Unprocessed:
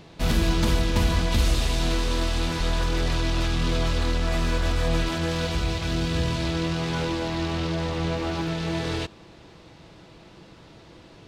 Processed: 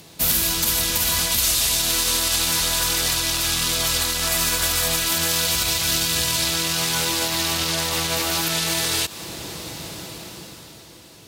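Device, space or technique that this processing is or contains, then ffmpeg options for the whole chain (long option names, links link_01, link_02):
FM broadcast chain: -filter_complex "[0:a]highpass=60,dynaudnorm=framelen=110:gausssize=21:maxgain=15.5dB,acrossover=split=730|7600[link_01][link_02][link_03];[link_01]acompressor=threshold=-29dB:ratio=4[link_04];[link_02]acompressor=threshold=-24dB:ratio=4[link_05];[link_03]acompressor=threshold=-44dB:ratio=4[link_06];[link_04][link_05][link_06]amix=inputs=3:normalize=0,aemphasis=mode=production:type=50fm,alimiter=limit=-15dB:level=0:latency=1:release=88,asoftclip=type=hard:threshold=-17.5dB,lowpass=frequency=15000:width=0.5412,lowpass=frequency=15000:width=1.3066,aemphasis=mode=production:type=50fm"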